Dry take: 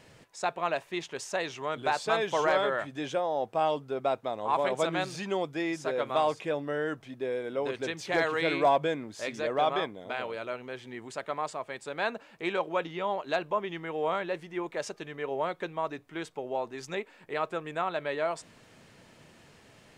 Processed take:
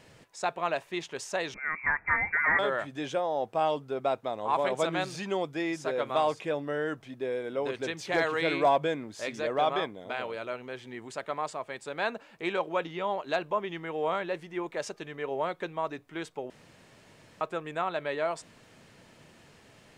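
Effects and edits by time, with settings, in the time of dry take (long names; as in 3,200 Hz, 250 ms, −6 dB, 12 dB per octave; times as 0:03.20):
0:01.54–0:02.59: voice inversion scrambler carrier 2,500 Hz
0:16.50–0:17.41: fill with room tone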